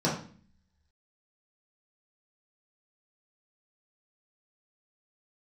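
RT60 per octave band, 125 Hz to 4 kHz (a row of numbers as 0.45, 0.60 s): 0.75, 0.80, 0.45, 0.40, 0.45, 0.45 s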